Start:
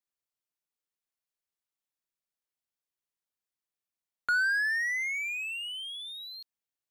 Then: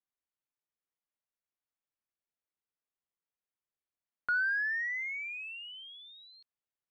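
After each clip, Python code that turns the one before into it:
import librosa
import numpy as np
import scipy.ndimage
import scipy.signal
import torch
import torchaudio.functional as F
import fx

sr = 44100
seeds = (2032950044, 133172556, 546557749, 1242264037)

y = scipy.signal.sosfilt(scipy.signal.butter(2, 2300.0, 'lowpass', fs=sr, output='sos'), x)
y = y * librosa.db_to_amplitude(-2.5)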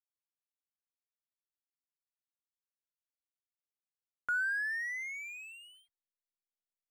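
y = fx.backlash(x, sr, play_db=-40.0)
y = y * librosa.db_to_amplitude(-2.0)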